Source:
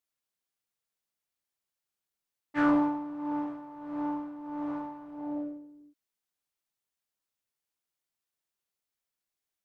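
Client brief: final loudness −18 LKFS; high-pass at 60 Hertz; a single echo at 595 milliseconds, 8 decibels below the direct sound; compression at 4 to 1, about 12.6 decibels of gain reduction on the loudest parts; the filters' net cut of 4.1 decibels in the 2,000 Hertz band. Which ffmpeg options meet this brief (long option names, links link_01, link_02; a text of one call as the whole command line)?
ffmpeg -i in.wav -af "highpass=60,equalizer=frequency=2000:width_type=o:gain=-6.5,acompressor=threshold=-37dB:ratio=4,aecho=1:1:595:0.398,volume=23dB" out.wav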